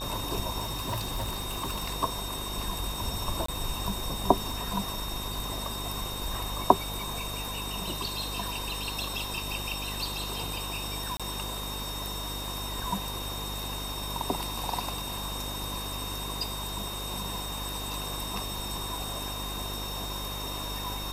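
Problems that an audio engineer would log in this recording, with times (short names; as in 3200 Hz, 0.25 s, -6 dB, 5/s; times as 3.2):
buzz 50 Hz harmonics 25 -39 dBFS
tone 3700 Hz -38 dBFS
0.6–1.93 clipped -27 dBFS
3.46–3.48 gap 24 ms
11.17–11.2 gap 26 ms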